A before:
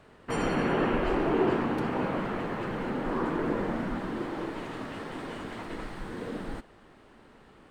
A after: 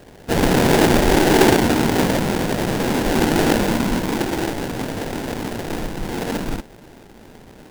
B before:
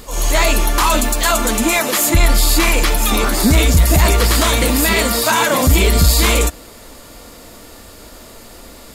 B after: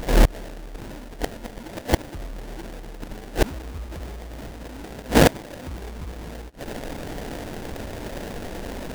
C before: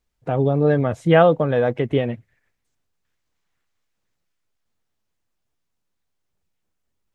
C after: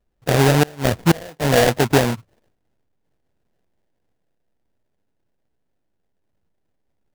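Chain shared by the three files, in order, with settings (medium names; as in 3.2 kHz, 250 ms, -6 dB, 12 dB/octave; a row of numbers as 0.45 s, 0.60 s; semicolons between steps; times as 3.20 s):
sample-rate reducer 1.2 kHz, jitter 20%; inverted gate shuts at -8 dBFS, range -28 dB; peak normalisation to -3 dBFS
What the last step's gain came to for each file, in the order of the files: +12.0 dB, +5.0 dB, +4.5 dB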